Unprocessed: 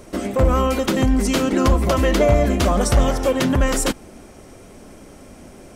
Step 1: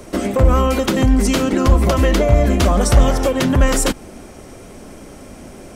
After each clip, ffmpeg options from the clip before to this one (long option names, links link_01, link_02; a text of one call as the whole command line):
ffmpeg -i in.wav -filter_complex "[0:a]acrossover=split=140[link_01][link_02];[link_02]acompressor=threshold=-19dB:ratio=6[link_03];[link_01][link_03]amix=inputs=2:normalize=0,volume=5dB" out.wav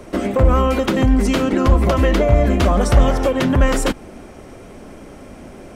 ffmpeg -i in.wav -af "bass=frequency=250:gain=-1,treble=frequency=4000:gain=-8" out.wav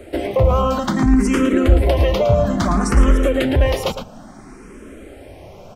ffmpeg -i in.wav -filter_complex "[0:a]asplit=2[link_01][link_02];[link_02]adelay=110.8,volume=-8dB,highshelf=frequency=4000:gain=-2.49[link_03];[link_01][link_03]amix=inputs=2:normalize=0,asplit=2[link_04][link_05];[link_05]afreqshift=0.59[link_06];[link_04][link_06]amix=inputs=2:normalize=1,volume=1.5dB" out.wav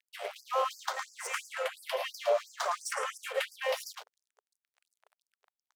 ffmpeg -i in.wav -af "aeval=exprs='sgn(val(0))*max(abs(val(0))-0.0299,0)':channel_layout=same,afftfilt=real='re*gte(b*sr/1024,390*pow(4700/390,0.5+0.5*sin(2*PI*2.9*pts/sr)))':imag='im*gte(b*sr/1024,390*pow(4700/390,0.5+0.5*sin(2*PI*2.9*pts/sr)))':win_size=1024:overlap=0.75,volume=-7dB" out.wav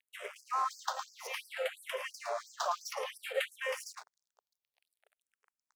ffmpeg -i in.wav -filter_complex "[0:a]asplit=2[link_01][link_02];[link_02]afreqshift=-0.59[link_03];[link_01][link_03]amix=inputs=2:normalize=1" out.wav